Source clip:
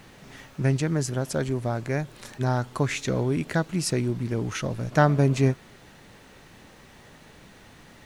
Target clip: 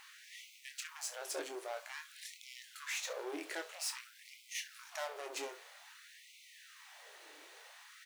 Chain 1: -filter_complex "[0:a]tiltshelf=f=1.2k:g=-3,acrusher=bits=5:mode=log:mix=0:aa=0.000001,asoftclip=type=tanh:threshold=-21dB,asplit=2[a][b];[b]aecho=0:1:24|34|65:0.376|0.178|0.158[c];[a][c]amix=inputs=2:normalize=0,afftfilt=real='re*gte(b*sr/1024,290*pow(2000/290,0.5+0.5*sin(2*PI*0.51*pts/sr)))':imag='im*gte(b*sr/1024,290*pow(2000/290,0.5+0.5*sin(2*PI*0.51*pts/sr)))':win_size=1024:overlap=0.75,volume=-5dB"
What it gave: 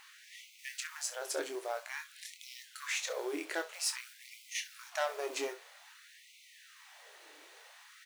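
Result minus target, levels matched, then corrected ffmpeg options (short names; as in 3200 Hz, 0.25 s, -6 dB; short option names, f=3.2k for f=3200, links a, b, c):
soft clip: distortion -6 dB
-filter_complex "[0:a]tiltshelf=f=1.2k:g=-3,acrusher=bits=5:mode=log:mix=0:aa=0.000001,asoftclip=type=tanh:threshold=-30.5dB,asplit=2[a][b];[b]aecho=0:1:24|34|65:0.376|0.178|0.158[c];[a][c]amix=inputs=2:normalize=0,afftfilt=real='re*gte(b*sr/1024,290*pow(2000/290,0.5+0.5*sin(2*PI*0.51*pts/sr)))':imag='im*gte(b*sr/1024,290*pow(2000/290,0.5+0.5*sin(2*PI*0.51*pts/sr)))':win_size=1024:overlap=0.75,volume=-5dB"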